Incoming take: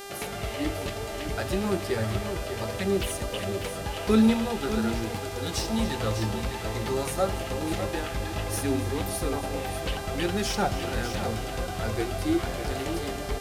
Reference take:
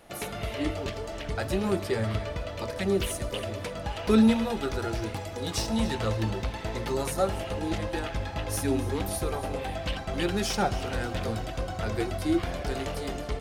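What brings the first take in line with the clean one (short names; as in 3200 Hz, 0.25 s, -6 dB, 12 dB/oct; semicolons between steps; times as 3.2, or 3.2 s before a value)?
de-hum 398.9 Hz, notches 35; inverse comb 0.598 s -9 dB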